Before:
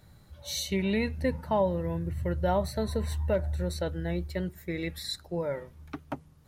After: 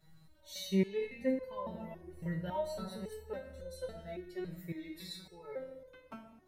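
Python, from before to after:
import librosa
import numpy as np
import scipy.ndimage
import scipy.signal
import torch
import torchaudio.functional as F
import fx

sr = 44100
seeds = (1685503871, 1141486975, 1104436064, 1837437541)

y = fx.room_shoebox(x, sr, seeds[0], volume_m3=1500.0, walls='mixed', distance_m=1.1)
y = fx.resonator_held(y, sr, hz=3.6, low_hz=160.0, high_hz=510.0)
y = y * librosa.db_to_amplitude(2.5)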